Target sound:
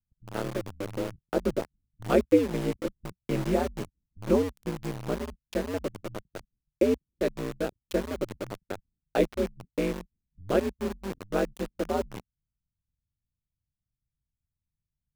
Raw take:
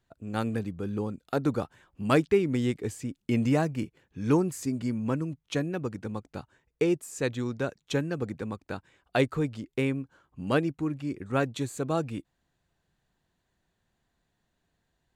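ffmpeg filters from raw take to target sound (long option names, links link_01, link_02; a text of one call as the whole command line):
ffmpeg -i in.wav -filter_complex "[0:a]equalizer=frequency=450:width_type=o:width=1.1:gain=10,aeval=exprs='val(0)*sin(2*PI*93*n/s)':channel_layout=same,acrossover=split=150[link_01][link_02];[link_02]aeval=exprs='val(0)*gte(abs(val(0)),0.0316)':channel_layout=same[link_03];[link_01][link_03]amix=inputs=2:normalize=0,volume=-3dB" out.wav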